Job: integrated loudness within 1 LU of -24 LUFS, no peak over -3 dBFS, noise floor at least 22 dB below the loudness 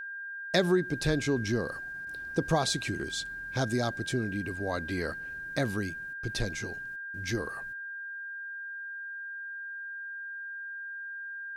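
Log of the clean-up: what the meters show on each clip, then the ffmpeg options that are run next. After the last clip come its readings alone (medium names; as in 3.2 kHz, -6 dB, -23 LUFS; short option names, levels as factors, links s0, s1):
steady tone 1.6 kHz; tone level -37 dBFS; loudness -33.0 LUFS; peak level -12.5 dBFS; loudness target -24.0 LUFS
-> -af "bandreject=f=1600:w=30"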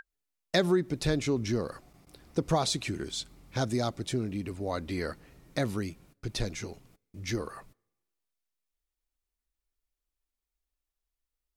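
steady tone not found; loudness -32.0 LUFS; peak level -13.0 dBFS; loudness target -24.0 LUFS
-> -af "volume=2.51"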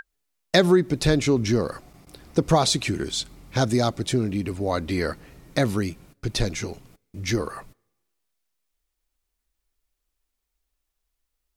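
loudness -24.0 LUFS; peak level -5.0 dBFS; noise floor -80 dBFS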